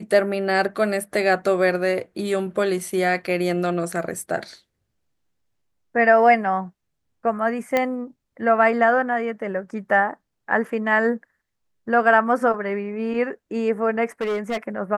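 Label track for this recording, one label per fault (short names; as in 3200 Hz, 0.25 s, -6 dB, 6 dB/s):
7.770000	7.770000	pop -8 dBFS
14.210000	14.580000	clipped -21 dBFS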